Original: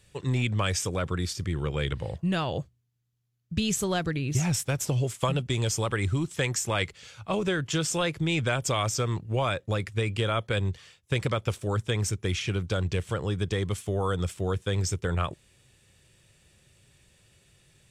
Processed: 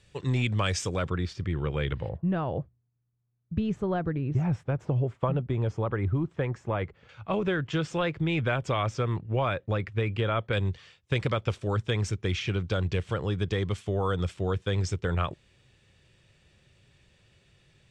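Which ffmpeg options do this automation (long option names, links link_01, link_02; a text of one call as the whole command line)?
ffmpeg -i in.wav -af "asetnsamples=nb_out_samples=441:pad=0,asendcmd='1.1 lowpass f 2900;2.09 lowpass f 1200;7.09 lowpass f 2600;10.53 lowpass f 4600',lowpass=6400" out.wav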